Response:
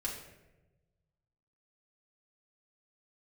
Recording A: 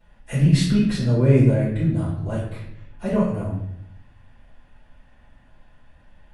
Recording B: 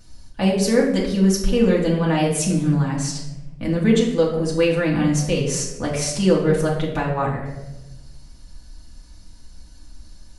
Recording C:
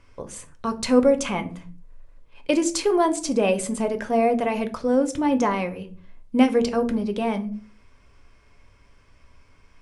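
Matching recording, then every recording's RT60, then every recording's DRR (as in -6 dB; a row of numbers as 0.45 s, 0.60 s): B; 0.70 s, 1.1 s, 0.45 s; -13.0 dB, -5.0 dB, 7.5 dB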